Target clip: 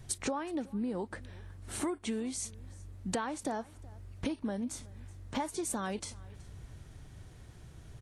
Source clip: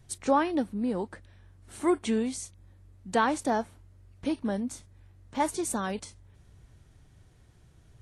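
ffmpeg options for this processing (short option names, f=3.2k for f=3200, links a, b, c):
-af "acompressor=threshold=-38dB:ratio=16,aecho=1:1:373:0.0708,volume=6.5dB"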